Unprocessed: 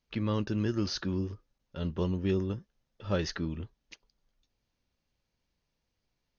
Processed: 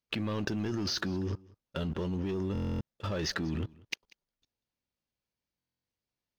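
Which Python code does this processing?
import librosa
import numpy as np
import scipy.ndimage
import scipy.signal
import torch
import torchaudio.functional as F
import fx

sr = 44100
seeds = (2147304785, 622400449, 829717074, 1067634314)

y = fx.highpass(x, sr, hz=95.0, slope=6)
y = fx.leveller(y, sr, passes=2)
y = fx.level_steps(y, sr, step_db=20)
y = y + 10.0 ** (-23.5 / 20.0) * np.pad(y, (int(190 * sr / 1000.0), 0))[:len(y)]
y = fx.buffer_glitch(y, sr, at_s=(2.53, 5.58), block=1024, repeats=11)
y = y * librosa.db_to_amplitude(7.5)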